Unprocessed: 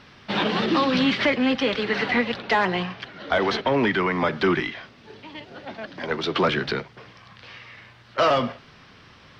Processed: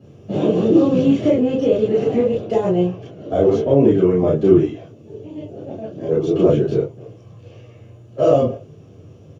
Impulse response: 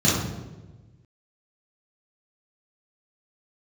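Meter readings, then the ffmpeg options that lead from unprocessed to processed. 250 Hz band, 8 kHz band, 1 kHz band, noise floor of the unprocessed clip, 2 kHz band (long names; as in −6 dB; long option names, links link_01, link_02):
+8.0 dB, can't be measured, −5.0 dB, −51 dBFS, below −15 dB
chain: -filter_complex "[0:a]firequalizer=gain_entry='entry(110,0);entry(210,-9);entry(300,2);entry(470,8);entry(990,-10);entry(1800,-21);entry(2800,-10);entry(4100,-21);entry(6600,-1);entry(10000,8)':delay=0.05:min_phase=1[link_01];[1:a]atrim=start_sample=2205,atrim=end_sample=3087[link_02];[link_01][link_02]afir=irnorm=-1:irlink=0,volume=-14dB"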